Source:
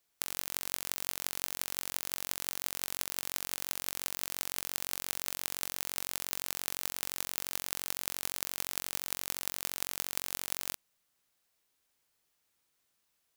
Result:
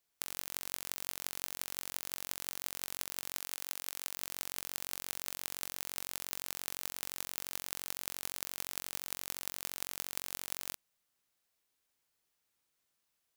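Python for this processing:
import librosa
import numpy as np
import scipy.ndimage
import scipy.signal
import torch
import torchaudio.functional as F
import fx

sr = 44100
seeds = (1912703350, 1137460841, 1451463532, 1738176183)

y = fx.low_shelf(x, sr, hz=400.0, db=-8.0, at=(3.4, 4.16))
y = y * librosa.db_to_amplitude(-4.0)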